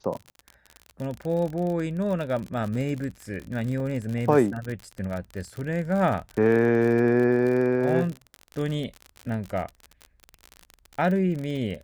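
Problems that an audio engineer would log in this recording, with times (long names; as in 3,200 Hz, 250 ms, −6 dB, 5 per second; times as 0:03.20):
surface crackle 51 per second −30 dBFS
0:03.80: drop-out 2.2 ms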